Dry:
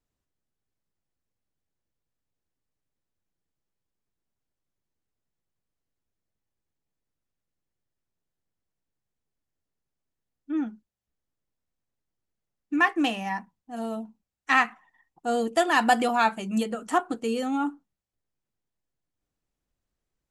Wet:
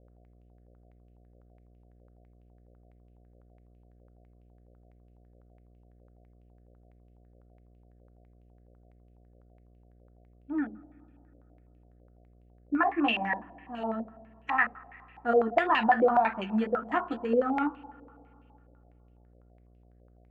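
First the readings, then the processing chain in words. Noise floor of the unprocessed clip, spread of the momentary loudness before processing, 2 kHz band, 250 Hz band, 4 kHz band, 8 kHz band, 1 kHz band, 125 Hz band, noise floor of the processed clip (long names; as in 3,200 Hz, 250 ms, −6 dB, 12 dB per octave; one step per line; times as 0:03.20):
below −85 dBFS, 14 LU, −4.0 dB, −3.0 dB, −5.5 dB, below −25 dB, −2.0 dB, can't be measured, −60 dBFS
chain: brickwall limiter −16 dBFS, peak gain reduction 8.5 dB
flanger 1.9 Hz, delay 7.5 ms, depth 7.2 ms, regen +35%
spring reverb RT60 2.7 s, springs 46/59 ms, chirp 65 ms, DRR 18.5 dB
hum with harmonics 60 Hz, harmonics 12, −59 dBFS −7 dB per octave
low-pass on a step sequencer 12 Hz 560–2,700 Hz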